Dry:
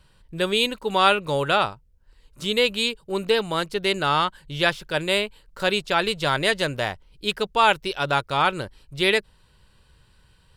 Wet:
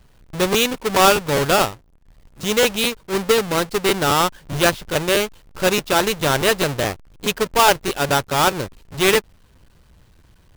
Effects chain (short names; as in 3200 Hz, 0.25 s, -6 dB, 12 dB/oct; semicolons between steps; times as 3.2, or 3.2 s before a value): half-waves squared off; crackling interface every 0.21 s, samples 512, repeat, from 0.31